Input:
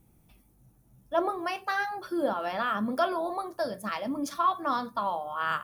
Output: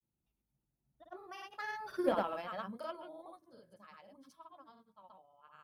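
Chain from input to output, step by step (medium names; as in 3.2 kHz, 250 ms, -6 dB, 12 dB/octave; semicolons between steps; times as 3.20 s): Doppler pass-by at 2.10 s, 20 m/s, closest 3.4 m; Chebyshev shaper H 7 -27 dB, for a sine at -16 dBFS; granulator, pitch spread up and down by 0 st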